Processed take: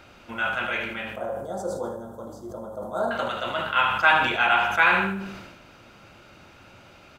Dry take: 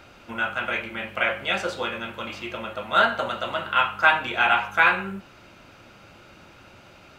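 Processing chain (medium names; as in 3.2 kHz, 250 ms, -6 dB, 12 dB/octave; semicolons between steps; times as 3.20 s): 1.13–3.11 s: Chebyshev band-stop 710–7900 Hz, order 2; feedback delay 77 ms, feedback 44%, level -10 dB; decay stretcher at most 47 dB/s; trim -1.5 dB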